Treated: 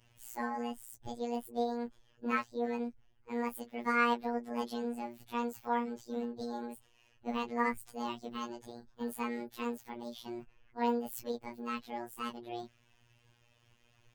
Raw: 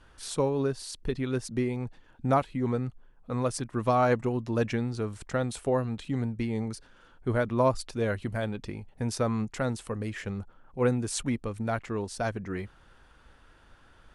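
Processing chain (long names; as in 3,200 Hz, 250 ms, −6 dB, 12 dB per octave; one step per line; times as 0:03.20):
phase-vocoder pitch shift without resampling +11 semitones
phases set to zero 119 Hz
level −3.5 dB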